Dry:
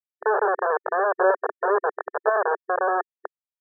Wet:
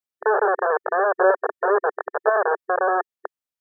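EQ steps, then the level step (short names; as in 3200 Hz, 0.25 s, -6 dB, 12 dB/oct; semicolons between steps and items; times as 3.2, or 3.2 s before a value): dynamic EQ 990 Hz, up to -4 dB, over -38 dBFS, Q 7.1; +2.5 dB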